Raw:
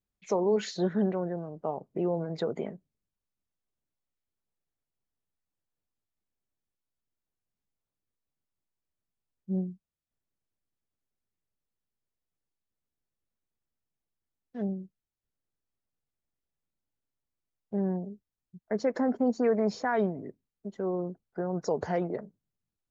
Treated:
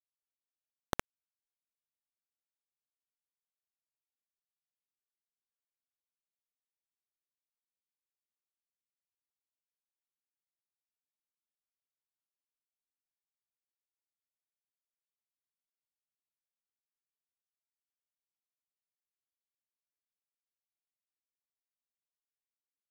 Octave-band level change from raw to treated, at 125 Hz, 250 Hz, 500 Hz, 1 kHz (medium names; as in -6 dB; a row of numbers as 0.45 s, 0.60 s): -23.0 dB, -28.0 dB, -27.0 dB, -15.5 dB